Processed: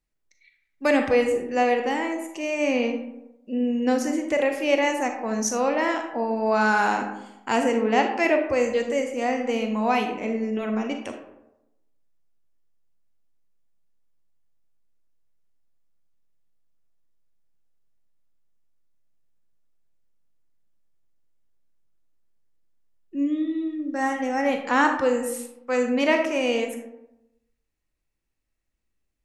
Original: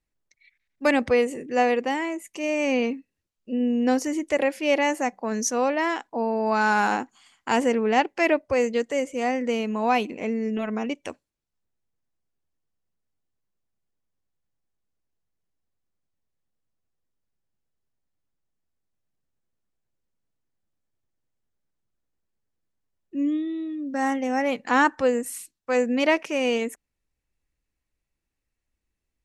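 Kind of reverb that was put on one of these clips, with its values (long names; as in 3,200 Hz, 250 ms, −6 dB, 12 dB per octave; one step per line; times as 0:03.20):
comb and all-pass reverb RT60 0.91 s, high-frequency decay 0.45×, pre-delay 0 ms, DRR 4 dB
level −1 dB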